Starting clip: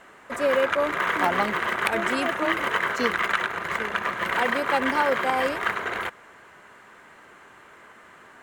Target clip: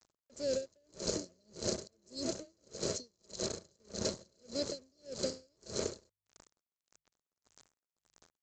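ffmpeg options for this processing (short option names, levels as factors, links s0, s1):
-filter_complex "[0:a]afftfilt=real='re*(1-between(b*sr/4096,660,4000))':imag='im*(1-between(b*sr/4096,660,4000))':win_size=4096:overlap=0.75,lowshelf=f=430:g=3,acrossover=split=130|3000[s0][s1][s2];[s1]acompressor=threshold=0.00316:ratio=1.5[s3];[s0][s3][s2]amix=inputs=3:normalize=0,aresample=16000,aeval=exprs='sgn(val(0))*max(abs(val(0))-0.00355,0)':c=same,aresample=44100,highshelf=f=3100:g=11.5,acompressor=threshold=0.00891:ratio=12,bandreject=f=50:t=h:w=6,bandreject=f=100:t=h:w=6,bandreject=f=150:t=h:w=6,aeval=exprs='val(0)*pow(10,-40*(0.5-0.5*cos(2*PI*1.7*n/s))/20)':c=same,volume=4.47"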